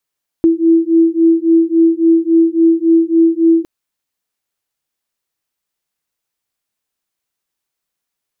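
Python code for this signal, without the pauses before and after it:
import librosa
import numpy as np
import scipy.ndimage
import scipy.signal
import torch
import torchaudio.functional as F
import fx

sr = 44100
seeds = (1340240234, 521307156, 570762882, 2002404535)

y = fx.two_tone_beats(sr, length_s=3.21, hz=328.0, beat_hz=3.6, level_db=-11.0)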